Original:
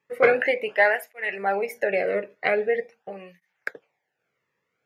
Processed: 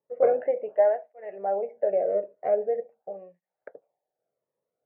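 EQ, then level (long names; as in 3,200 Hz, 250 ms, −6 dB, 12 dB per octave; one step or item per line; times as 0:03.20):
resonant band-pass 630 Hz, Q 3.7
high-frequency loss of the air 130 metres
spectral tilt −4.5 dB per octave
0.0 dB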